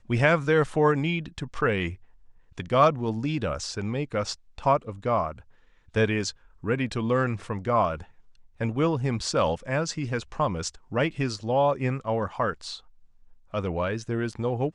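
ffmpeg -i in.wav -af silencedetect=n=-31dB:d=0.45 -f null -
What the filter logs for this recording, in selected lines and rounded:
silence_start: 1.92
silence_end: 2.58 | silence_duration: 0.65
silence_start: 5.32
silence_end: 5.95 | silence_duration: 0.63
silence_start: 8.02
silence_end: 8.61 | silence_duration: 0.59
silence_start: 12.75
silence_end: 13.54 | silence_duration: 0.79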